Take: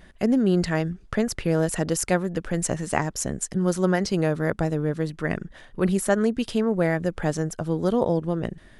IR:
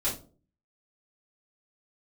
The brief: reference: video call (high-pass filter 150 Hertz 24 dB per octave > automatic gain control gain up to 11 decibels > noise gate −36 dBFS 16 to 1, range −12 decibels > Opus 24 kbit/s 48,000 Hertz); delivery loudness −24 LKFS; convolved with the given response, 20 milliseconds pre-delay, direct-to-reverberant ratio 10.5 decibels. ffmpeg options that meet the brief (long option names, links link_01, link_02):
-filter_complex "[0:a]asplit=2[link_01][link_02];[1:a]atrim=start_sample=2205,adelay=20[link_03];[link_02][link_03]afir=irnorm=-1:irlink=0,volume=-17.5dB[link_04];[link_01][link_04]amix=inputs=2:normalize=0,highpass=frequency=150:width=0.5412,highpass=frequency=150:width=1.3066,dynaudnorm=maxgain=11dB,agate=range=-12dB:threshold=-36dB:ratio=16,volume=1dB" -ar 48000 -c:a libopus -b:a 24k